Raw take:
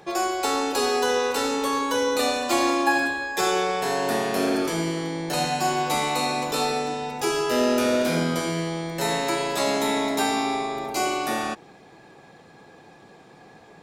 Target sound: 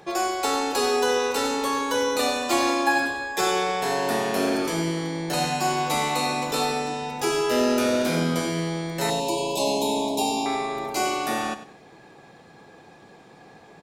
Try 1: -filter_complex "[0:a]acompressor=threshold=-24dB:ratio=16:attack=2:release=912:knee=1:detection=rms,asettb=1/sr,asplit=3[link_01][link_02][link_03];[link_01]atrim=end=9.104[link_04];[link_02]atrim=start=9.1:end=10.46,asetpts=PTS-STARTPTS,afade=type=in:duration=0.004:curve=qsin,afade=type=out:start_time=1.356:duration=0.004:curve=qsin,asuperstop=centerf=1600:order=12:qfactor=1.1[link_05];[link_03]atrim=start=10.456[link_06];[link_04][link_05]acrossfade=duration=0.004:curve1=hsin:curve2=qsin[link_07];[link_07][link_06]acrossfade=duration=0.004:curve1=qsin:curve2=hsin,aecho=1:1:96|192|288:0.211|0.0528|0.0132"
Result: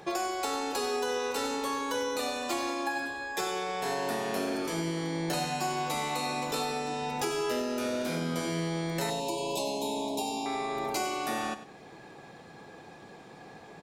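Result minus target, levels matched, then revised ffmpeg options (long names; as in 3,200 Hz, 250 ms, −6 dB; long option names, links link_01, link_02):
downward compressor: peak gain reduction +12 dB
-filter_complex "[0:a]asettb=1/sr,asplit=3[link_01][link_02][link_03];[link_01]atrim=end=9.104[link_04];[link_02]atrim=start=9.1:end=10.46,asetpts=PTS-STARTPTS,afade=type=in:duration=0.004:curve=qsin,afade=type=out:start_time=1.356:duration=0.004:curve=qsin,asuperstop=centerf=1600:order=12:qfactor=1.1[link_05];[link_03]atrim=start=10.456[link_06];[link_04][link_05]acrossfade=duration=0.004:curve1=hsin:curve2=qsin[link_07];[link_07][link_06]acrossfade=duration=0.004:curve1=qsin:curve2=hsin,aecho=1:1:96|192|288:0.211|0.0528|0.0132"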